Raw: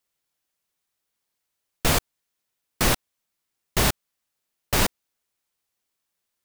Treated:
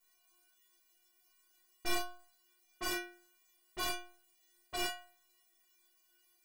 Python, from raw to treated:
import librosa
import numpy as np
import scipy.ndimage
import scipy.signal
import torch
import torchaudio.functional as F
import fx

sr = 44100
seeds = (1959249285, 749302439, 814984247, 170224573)

y = fx.tracing_dist(x, sr, depth_ms=0.086)
y = fx.env_lowpass(y, sr, base_hz=690.0, full_db=-19.0)
y = fx.low_shelf(y, sr, hz=120.0, db=-10.5)
y = fx.quant_dither(y, sr, seeds[0], bits=10, dither='triangular')
y = fx.stiff_resonator(y, sr, f0_hz=350.0, decay_s=0.48, stiffness=0.008)
y = fx.room_early_taps(y, sr, ms=(19, 37), db=(-9.0, -7.0))
y = y * 10.0 ** (4.0 / 20.0)